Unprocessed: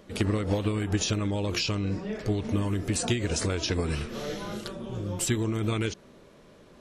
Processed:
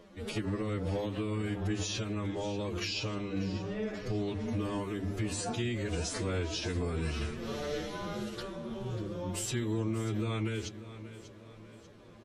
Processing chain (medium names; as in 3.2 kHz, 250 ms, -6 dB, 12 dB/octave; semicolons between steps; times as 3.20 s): treble shelf 7 kHz -6.5 dB; hum notches 50/100/150/200/250/300 Hz; peak limiter -23.5 dBFS, peak gain reduction 8 dB; time stretch by phase-locked vocoder 1.8×; on a send: feedback delay 590 ms, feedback 46%, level -14.5 dB; on the sum: trim -1.5 dB